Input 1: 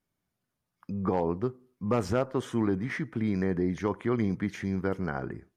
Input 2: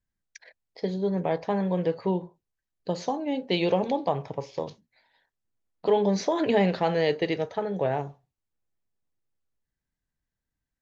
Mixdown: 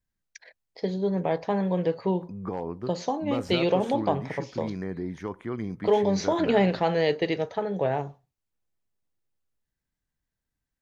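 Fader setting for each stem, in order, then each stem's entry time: -5.0 dB, +0.5 dB; 1.40 s, 0.00 s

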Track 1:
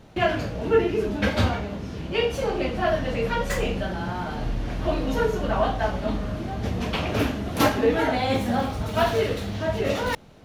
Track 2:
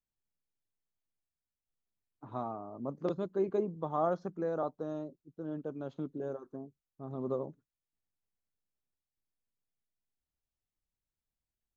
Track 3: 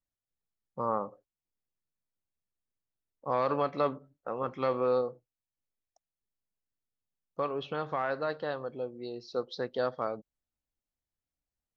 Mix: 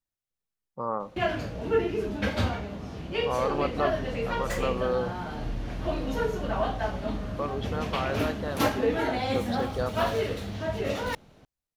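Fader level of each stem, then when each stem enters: -5.0 dB, -12.0 dB, 0.0 dB; 1.00 s, 0.45 s, 0.00 s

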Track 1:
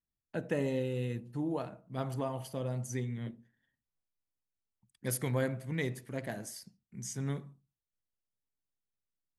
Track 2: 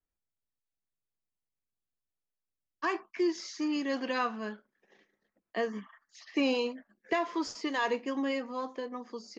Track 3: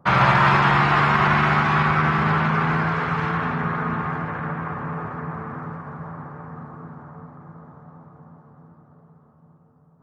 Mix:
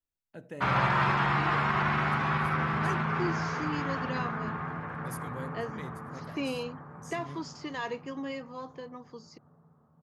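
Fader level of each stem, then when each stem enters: -9.5 dB, -5.0 dB, -9.5 dB; 0.00 s, 0.00 s, 0.55 s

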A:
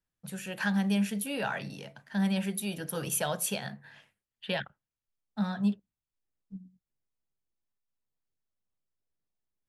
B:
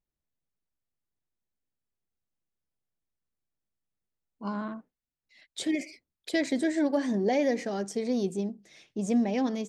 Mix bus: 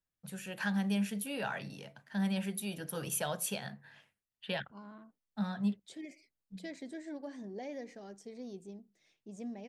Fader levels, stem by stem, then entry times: -4.5 dB, -17.0 dB; 0.00 s, 0.30 s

